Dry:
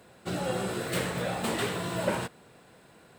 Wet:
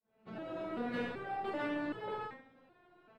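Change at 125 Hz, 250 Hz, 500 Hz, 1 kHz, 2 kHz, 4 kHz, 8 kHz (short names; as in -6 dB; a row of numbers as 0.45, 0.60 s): -18.0 dB, -6.0 dB, -8.5 dB, -5.5 dB, -8.0 dB, -16.0 dB, under -30 dB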